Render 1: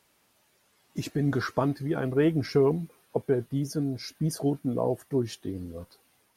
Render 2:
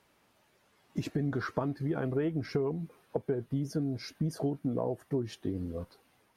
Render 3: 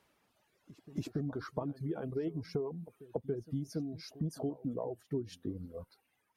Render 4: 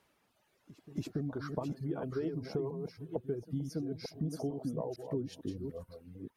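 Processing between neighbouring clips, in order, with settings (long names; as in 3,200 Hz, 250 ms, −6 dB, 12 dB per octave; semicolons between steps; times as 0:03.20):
downward compressor 6 to 1, threshold −30 dBFS, peak gain reduction 12 dB; high-shelf EQ 4,000 Hz −11 dB; level +2 dB
dynamic equaliser 1,800 Hz, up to −8 dB, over −55 dBFS, Q 1.1; reverb reduction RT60 1.8 s; echo ahead of the sound 282 ms −18 dB; level −3.5 dB
delay that plays each chunk backwards 451 ms, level −6.5 dB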